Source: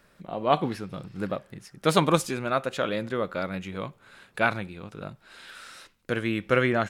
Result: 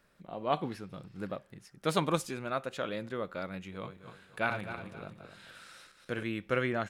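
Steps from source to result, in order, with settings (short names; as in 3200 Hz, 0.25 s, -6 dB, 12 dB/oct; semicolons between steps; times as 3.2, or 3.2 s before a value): 3.71–6.23 regenerating reverse delay 0.13 s, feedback 56%, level -6.5 dB; gain -8 dB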